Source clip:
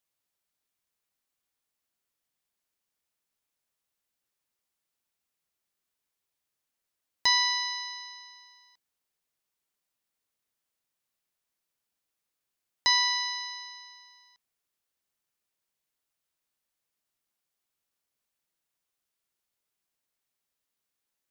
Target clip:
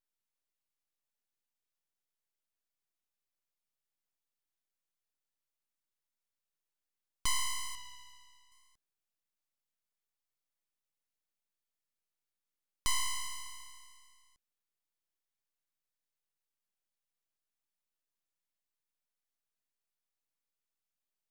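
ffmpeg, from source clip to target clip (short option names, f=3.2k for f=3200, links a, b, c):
-filter_complex "[0:a]asettb=1/sr,asplit=3[a][b][c];[a]atrim=end=7.754[d];[b]atrim=start=7.75:end=8.52,asetpts=PTS-STARTPTS,afade=t=in:d=0.004:c=qsin,afade=t=out:st=0.766:d=0.004:c=qsin,bass=f=250:g=0,treble=f=4k:g=-13[e];[c]atrim=start=8.516[f];[d][e]acrossfade=d=0.004:c1=hsin:c2=qsin[g];[g][f]acrossfade=d=0.004:c1=qsin:c2=hsin,aeval=exprs='abs(val(0))':c=same,volume=-6dB"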